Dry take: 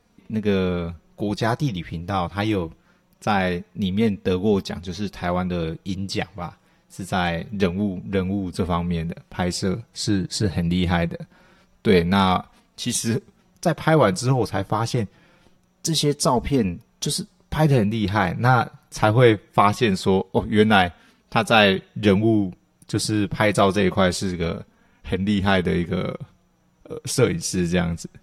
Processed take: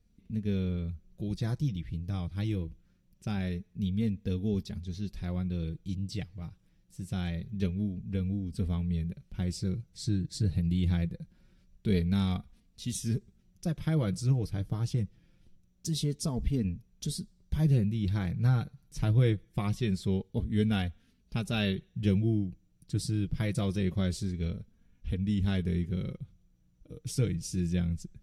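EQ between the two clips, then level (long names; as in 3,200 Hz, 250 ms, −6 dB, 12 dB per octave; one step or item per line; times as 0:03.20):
guitar amp tone stack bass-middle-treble 10-0-1
+7.5 dB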